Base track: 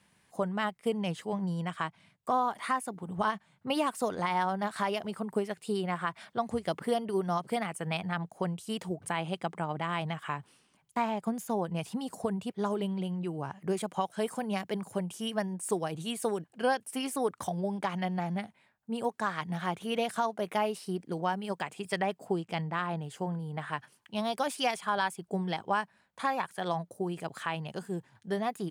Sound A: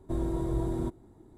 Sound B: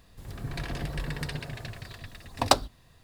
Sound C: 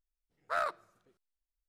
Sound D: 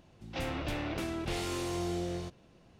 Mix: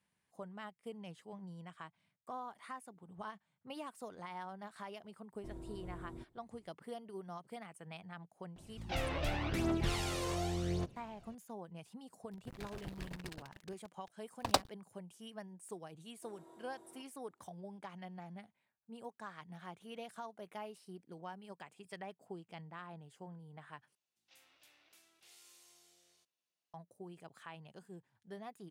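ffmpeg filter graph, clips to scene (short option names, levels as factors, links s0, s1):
-filter_complex "[1:a]asplit=2[s0][s1];[4:a]asplit=2[s2][s3];[0:a]volume=0.15[s4];[s2]aphaser=in_gain=1:out_gain=1:delay=2:decay=0.57:speed=0.88:type=triangular[s5];[2:a]aeval=exprs='sgn(val(0))*max(abs(val(0))-0.0211,0)':c=same[s6];[s1]highpass=600[s7];[s3]aderivative[s8];[s4]asplit=2[s9][s10];[s9]atrim=end=23.954[s11];[s8]atrim=end=2.79,asetpts=PTS-STARTPTS,volume=0.15[s12];[s10]atrim=start=26.736[s13];[s0]atrim=end=1.37,asetpts=PTS-STARTPTS,volume=0.126,afade=t=in:d=0.004:c=hsin,afade=t=out:st=1.366:d=0.004:c=hsin,adelay=5340[s14];[s5]atrim=end=2.79,asetpts=PTS-STARTPTS,volume=0.75,afade=t=in:d=0.004:c=hsin,afade=t=out:st=2.786:d=0.004:c=hsin,adelay=8560[s15];[s6]atrim=end=3.03,asetpts=PTS-STARTPTS,volume=0.398,afade=t=in:d=0.004:c=hsin,afade=t=out:st=3.026:d=0.004:c=hsin,adelay=12030[s16];[s7]atrim=end=1.37,asetpts=PTS-STARTPTS,volume=0.133,afade=t=in:d=0.004:c=hsin,afade=t=out:st=1.366:d=0.004:c=hsin,adelay=16130[s17];[s11][s12]acrossfade=d=0.004:c1=hsin:c2=hsin[s18];[s18][s13]acrossfade=d=0.004:c1=hsin:c2=hsin[s19];[s19][s14][s15][s16][s17]amix=inputs=5:normalize=0"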